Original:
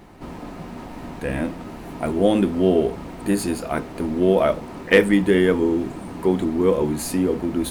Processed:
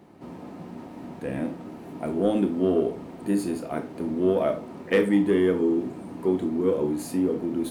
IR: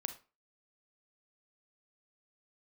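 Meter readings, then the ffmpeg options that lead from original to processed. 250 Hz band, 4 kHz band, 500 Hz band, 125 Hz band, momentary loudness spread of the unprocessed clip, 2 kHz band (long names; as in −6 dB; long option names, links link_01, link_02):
−3.5 dB, −10.0 dB, −4.5 dB, −6.5 dB, 18 LU, −10.0 dB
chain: -filter_complex "[0:a]highpass=130,acrossover=split=710[link_01][link_02];[link_01]acontrast=72[link_03];[link_03][link_02]amix=inputs=2:normalize=0[link_04];[1:a]atrim=start_sample=2205,asetrate=52920,aresample=44100[link_05];[link_04][link_05]afir=irnorm=-1:irlink=0,volume=-7.5dB"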